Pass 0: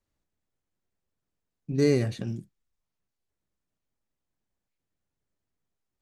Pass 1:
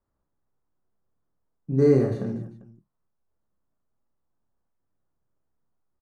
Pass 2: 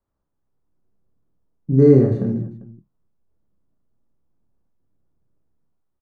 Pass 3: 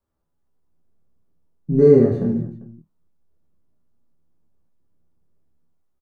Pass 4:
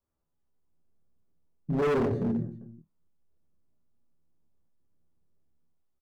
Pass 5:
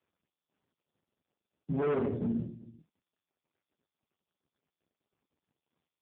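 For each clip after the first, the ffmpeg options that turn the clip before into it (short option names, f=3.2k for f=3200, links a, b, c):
-filter_complex "[0:a]highshelf=f=1.8k:t=q:w=1.5:g=-13.5,asplit=2[a][b];[b]aecho=0:1:30|75|142.5|243.8|395.6:0.631|0.398|0.251|0.158|0.1[c];[a][c]amix=inputs=2:normalize=0,volume=1.5dB"
-filter_complex "[0:a]highshelf=f=3.9k:g=-7.5,acrossover=split=450|1500[a][b][c];[a]dynaudnorm=f=170:g=7:m=10dB[d];[d][b][c]amix=inputs=3:normalize=0"
-af "aecho=1:1:12|25:0.631|0.422,volume=-1dB"
-af "asoftclip=type=hard:threshold=-17dB,volume=-6.5dB"
-af "volume=-3dB" -ar 8000 -c:a libopencore_amrnb -b:a 5150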